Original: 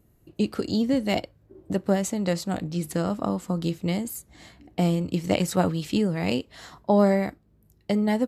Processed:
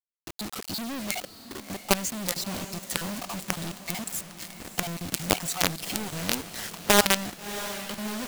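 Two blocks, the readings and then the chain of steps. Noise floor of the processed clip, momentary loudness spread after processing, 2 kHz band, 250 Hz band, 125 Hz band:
-48 dBFS, 13 LU, +5.5 dB, -9.5 dB, -9.5 dB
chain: random holes in the spectrogram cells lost 34%; in parallel at 0 dB: compression 8:1, threshold -34 dBFS, peak gain reduction 18.5 dB; on the sum: treble shelf 6.2 kHz -10.5 dB; companded quantiser 2-bit; treble shelf 2.6 kHz +9.5 dB; on a send: echo that smears into a reverb 663 ms, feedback 54%, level -12.5 dB; on the sum: trim -9 dB

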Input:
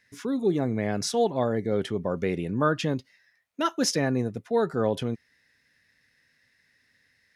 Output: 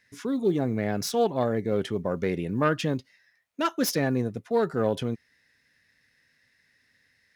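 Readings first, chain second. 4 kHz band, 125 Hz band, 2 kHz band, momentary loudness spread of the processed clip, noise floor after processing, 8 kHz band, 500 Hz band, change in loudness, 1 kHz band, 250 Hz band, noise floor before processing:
-2.0 dB, 0.0 dB, 0.0 dB, 6 LU, -68 dBFS, -2.5 dB, 0.0 dB, 0.0 dB, -0.5 dB, 0.0 dB, -68 dBFS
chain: self-modulated delay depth 0.085 ms; short-mantissa float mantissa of 6-bit

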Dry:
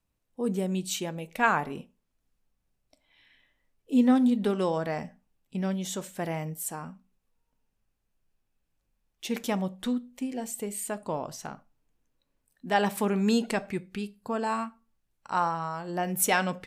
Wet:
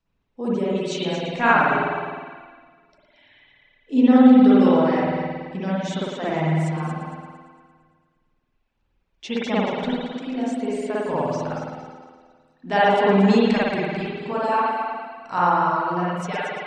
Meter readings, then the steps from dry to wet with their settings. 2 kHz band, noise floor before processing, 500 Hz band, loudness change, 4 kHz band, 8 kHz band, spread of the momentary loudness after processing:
+7.5 dB, -78 dBFS, +9.5 dB, +8.5 dB, +6.0 dB, no reading, 14 LU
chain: fade out at the end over 1.04 s; low-pass 6 kHz 24 dB/octave; multi-head delay 114 ms, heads first and second, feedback 48%, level -10 dB; spring tank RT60 1.7 s, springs 51 ms, chirp 50 ms, DRR -8.5 dB; reverb removal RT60 0.62 s; trim +1 dB

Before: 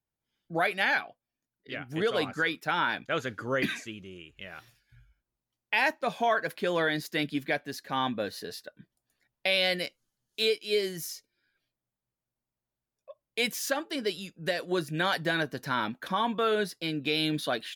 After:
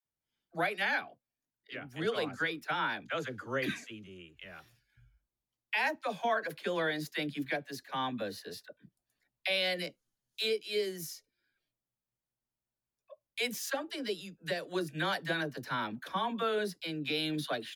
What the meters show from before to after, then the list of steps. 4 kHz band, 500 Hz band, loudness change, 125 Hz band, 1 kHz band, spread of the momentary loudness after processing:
-5.0 dB, -5.0 dB, -5.0 dB, -5.0 dB, -5.0 dB, 14 LU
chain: phase dispersion lows, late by 54 ms, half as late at 480 Hz; trim -5 dB

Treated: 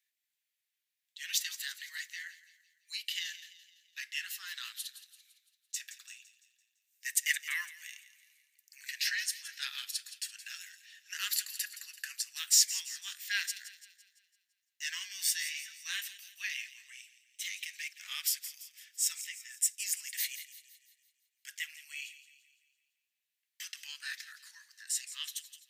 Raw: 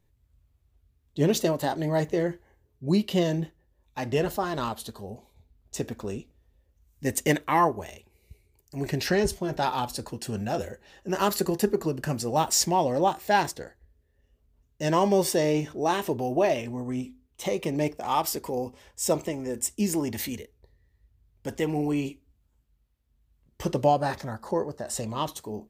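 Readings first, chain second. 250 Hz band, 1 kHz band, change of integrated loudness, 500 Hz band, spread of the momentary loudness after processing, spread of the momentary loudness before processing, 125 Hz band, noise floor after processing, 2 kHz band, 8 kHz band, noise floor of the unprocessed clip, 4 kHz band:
under -40 dB, -32.0 dB, -7.5 dB, under -40 dB, 18 LU, 15 LU, under -40 dB, under -85 dBFS, -2.0 dB, +0.5 dB, -69 dBFS, 0.0 dB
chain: steep high-pass 1.7 kHz 48 dB/octave; on a send: feedback echo behind a high-pass 169 ms, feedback 49%, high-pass 2.3 kHz, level -13 dB

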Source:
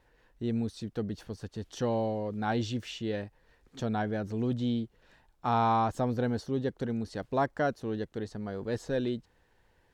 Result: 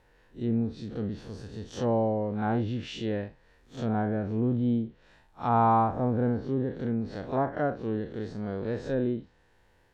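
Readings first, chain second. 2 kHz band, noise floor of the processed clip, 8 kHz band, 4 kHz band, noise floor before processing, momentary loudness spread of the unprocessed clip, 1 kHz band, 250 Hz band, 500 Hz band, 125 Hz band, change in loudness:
-1.5 dB, -63 dBFS, no reading, -3.0 dB, -68 dBFS, 10 LU, +3.0 dB, +3.5 dB, +2.5 dB, +3.5 dB, +3.0 dB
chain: spectral blur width 99 ms; low-pass that closes with the level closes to 1.5 kHz, closed at -28.5 dBFS; trim +4.5 dB

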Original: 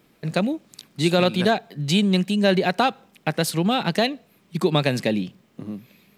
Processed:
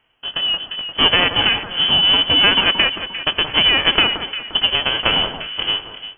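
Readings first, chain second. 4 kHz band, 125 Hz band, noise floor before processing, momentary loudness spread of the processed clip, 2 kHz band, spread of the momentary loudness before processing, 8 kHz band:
+17.0 dB, -8.0 dB, -60 dBFS, 10 LU, +10.5 dB, 17 LU, under -30 dB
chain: formants flattened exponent 0.3; compression, threshold -22 dBFS, peak gain reduction 10 dB; rotary cabinet horn 0.7 Hz; frequency inversion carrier 3.2 kHz; on a send: echo whose repeats swap between lows and highs 175 ms, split 1.4 kHz, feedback 60%, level -7.5 dB; on the sum: level rider gain up to 12 dB; trim +2 dB; Nellymoser 88 kbps 44.1 kHz

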